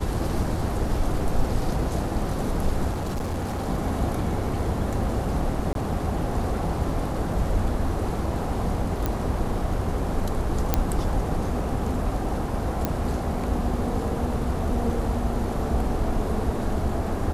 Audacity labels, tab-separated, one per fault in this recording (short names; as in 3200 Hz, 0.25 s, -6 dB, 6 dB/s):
2.910000	3.670000	clipped -24.5 dBFS
5.730000	5.750000	gap 22 ms
9.060000	9.060000	pop -11 dBFS
10.740000	10.740000	pop -5 dBFS
12.850000	12.850000	pop -10 dBFS